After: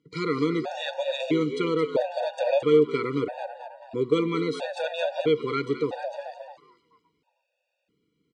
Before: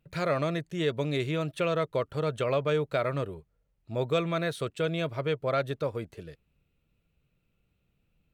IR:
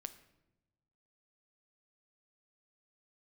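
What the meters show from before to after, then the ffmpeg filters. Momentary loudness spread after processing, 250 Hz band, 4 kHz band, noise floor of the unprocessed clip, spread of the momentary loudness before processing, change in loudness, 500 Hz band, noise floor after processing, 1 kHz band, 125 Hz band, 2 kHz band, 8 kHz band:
15 LU, +6.5 dB, +3.0 dB, −75 dBFS, 9 LU, +3.5 dB, +4.5 dB, −79 dBFS, +2.5 dB, −3.5 dB, +1.0 dB, can't be measured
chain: -filter_complex "[0:a]highpass=210,equalizer=frequency=300:width_type=q:width=4:gain=9,equalizer=frequency=450:width_type=q:width=4:gain=4,equalizer=frequency=1200:width_type=q:width=4:gain=-6,equalizer=frequency=4700:width_type=q:width=4:gain=5,lowpass=frequency=7600:width=0.5412,lowpass=frequency=7600:width=1.3066,asplit=6[link_01][link_02][link_03][link_04][link_05][link_06];[link_02]adelay=218,afreqshift=100,volume=-9dB[link_07];[link_03]adelay=436,afreqshift=200,volume=-16.1dB[link_08];[link_04]adelay=654,afreqshift=300,volume=-23.3dB[link_09];[link_05]adelay=872,afreqshift=400,volume=-30.4dB[link_10];[link_06]adelay=1090,afreqshift=500,volume=-37.5dB[link_11];[link_01][link_07][link_08][link_09][link_10][link_11]amix=inputs=6:normalize=0,asplit=2[link_12][link_13];[1:a]atrim=start_sample=2205,afade=type=out:start_time=0.43:duration=0.01,atrim=end_sample=19404[link_14];[link_13][link_14]afir=irnorm=-1:irlink=0,volume=1.5dB[link_15];[link_12][link_15]amix=inputs=2:normalize=0,afftfilt=real='re*gt(sin(2*PI*0.76*pts/sr)*(1-2*mod(floor(b*sr/1024/480),2)),0)':imag='im*gt(sin(2*PI*0.76*pts/sr)*(1-2*mod(floor(b*sr/1024/480),2)),0)':win_size=1024:overlap=0.75"

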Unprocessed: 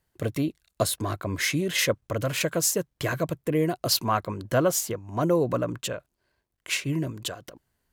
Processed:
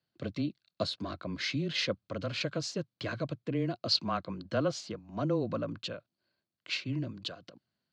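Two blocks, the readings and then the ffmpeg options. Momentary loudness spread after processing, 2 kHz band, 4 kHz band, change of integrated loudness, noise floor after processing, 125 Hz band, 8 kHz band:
10 LU, −8.5 dB, −3.5 dB, −7.5 dB, below −85 dBFS, −7.0 dB, −18.5 dB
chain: -af "highpass=frequency=130:width=0.5412,highpass=frequency=130:width=1.3066,equalizer=frequency=210:width_type=q:width=4:gain=4,equalizer=frequency=440:width_type=q:width=4:gain=-6,equalizer=frequency=930:width_type=q:width=4:gain=-8,equalizer=frequency=1900:width_type=q:width=4:gain=-6,equalizer=frequency=4400:width_type=q:width=4:gain=8,lowpass=frequency=4800:width=0.5412,lowpass=frequency=4800:width=1.3066,afreqshift=-16,volume=-6dB"

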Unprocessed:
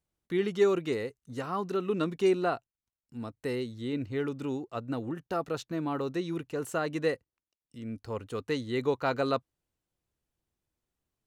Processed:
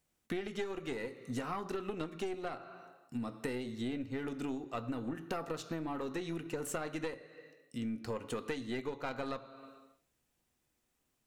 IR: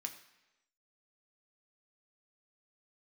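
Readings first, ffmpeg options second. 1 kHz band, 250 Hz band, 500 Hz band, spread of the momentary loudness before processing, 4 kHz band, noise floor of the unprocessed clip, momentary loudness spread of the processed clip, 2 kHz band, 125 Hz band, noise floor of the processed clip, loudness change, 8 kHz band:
−7.0 dB, −6.0 dB, −10.0 dB, 12 LU, −5.5 dB, below −85 dBFS, 7 LU, −5.5 dB, −7.0 dB, −80 dBFS, −8.0 dB, 0.0 dB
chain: -filter_complex "[0:a]asplit=2[link_01][link_02];[1:a]atrim=start_sample=2205[link_03];[link_02][link_03]afir=irnorm=-1:irlink=0,volume=4dB[link_04];[link_01][link_04]amix=inputs=2:normalize=0,aeval=exprs='0.335*(cos(1*acos(clip(val(0)/0.335,-1,1)))-cos(1*PI/2))+0.0531*(cos(4*acos(clip(val(0)/0.335,-1,1)))-cos(4*PI/2))':channel_layout=same,acompressor=threshold=-36dB:ratio=16,volume=1.5dB"

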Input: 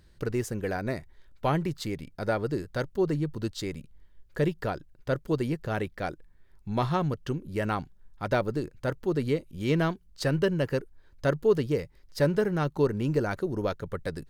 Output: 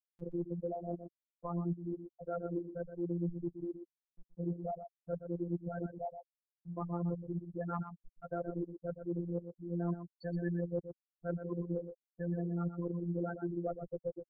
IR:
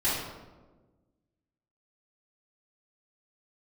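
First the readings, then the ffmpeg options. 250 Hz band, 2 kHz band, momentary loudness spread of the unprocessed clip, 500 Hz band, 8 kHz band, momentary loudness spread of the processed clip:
−7.5 dB, −20.0 dB, 9 LU, −11.5 dB, below −30 dB, 8 LU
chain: -filter_complex "[0:a]bandreject=frequency=221:width_type=h:width=4,bandreject=frequency=442:width_type=h:width=4,bandreject=frequency=663:width_type=h:width=4,bandreject=frequency=884:width_type=h:width=4,bandreject=frequency=1105:width_type=h:width=4,bandreject=frequency=1326:width_type=h:width=4,bandreject=frequency=1547:width_type=h:width=4,afftfilt=real='re*gte(hypot(re,im),0.141)':imag='im*gte(hypot(re,im),0.141)':win_size=1024:overlap=0.75,acrossover=split=100[link_01][link_02];[link_02]acompressor=mode=upward:threshold=-40dB:ratio=2.5[link_03];[link_01][link_03]amix=inputs=2:normalize=0,afftfilt=real='hypot(re,im)*cos(PI*b)':imag='0':win_size=1024:overlap=0.75,areverse,acompressor=threshold=-42dB:ratio=4,areverse,aecho=1:1:122:0.335,volume=5dB"

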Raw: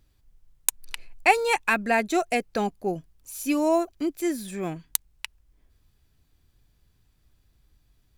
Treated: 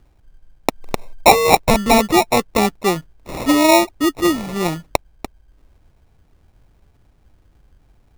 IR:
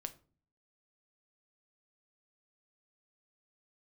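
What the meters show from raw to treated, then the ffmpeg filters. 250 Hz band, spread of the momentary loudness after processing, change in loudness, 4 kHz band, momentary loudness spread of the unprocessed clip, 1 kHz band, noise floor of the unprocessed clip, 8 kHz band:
+10.0 dB, 13 LU, +9.5 dB, +14.0 dB, 18 LU, +10.0 dB, −66 dBFS, +7.0 dB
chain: -af "acrusher=samples=28:mix=1:aa=0.000001,apsyclip=11.5dB,volume=-1.5dB"

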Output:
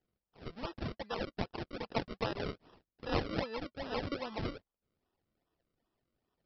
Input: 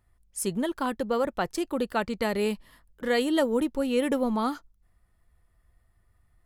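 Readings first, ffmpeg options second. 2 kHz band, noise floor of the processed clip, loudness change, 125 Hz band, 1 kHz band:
−9.5 dB, below −85 dBFS, −11.0 dB, +0.5 dB, −9.5 dB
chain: -af "bandpass=frequency=3700:width_type=q:width=0.73:csg=0,aresample=11025,acrusher=samples=9:mix=1:aa=0.000001:lfo=1:lforange=9:lforate=2.5,aresample=44100,volume=1dB"

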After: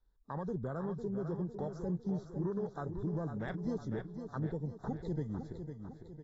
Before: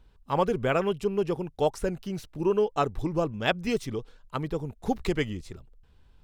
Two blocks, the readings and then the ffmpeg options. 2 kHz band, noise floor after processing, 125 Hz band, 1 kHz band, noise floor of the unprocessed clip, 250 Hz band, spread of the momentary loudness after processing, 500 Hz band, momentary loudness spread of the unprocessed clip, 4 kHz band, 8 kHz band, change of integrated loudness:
−17.5 dB, −58 dBFS, −3.5 dB, −15.5 dB, −59 dBFS, −6.0 dB, 6 LU, −13.0 dB, 11 LU, below −25 dB, below −20 dB, −10.0 dB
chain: -filter_complex "[0:a]acrossover=split=170|3000[link_01][link_02][link_03];[link_02]acompressor=threshold=-38dB:ratio=2[link_04];[link_01][link_04][link_03]amix=inputs=3:normalize=0,asuperstop=centerf=2600:order=12:qfactor=1.9,afwtdn=0.0126,lowshelf=frequency=70:gain=-11.5,alimiter=level_in=4dB:limit=-24dB:level=0:latency=1:release=31,volume=-4dB,adynamicequalizer=threshold=0.00282:dfrequency=170:dqfactor=2:tfrequency=170:tqfactor=2:attack=5:release=100:ratio=0.375:range=2.5:mode=boostabove:tftype=bell,aecho=1:1:503|1006|1509|2012|2515|3018:0.398|0.199|0.0995|0.0498|0.0249|0.0124,volume=-2.5dB" -ar 22050 -c:a aac -b:a 24k

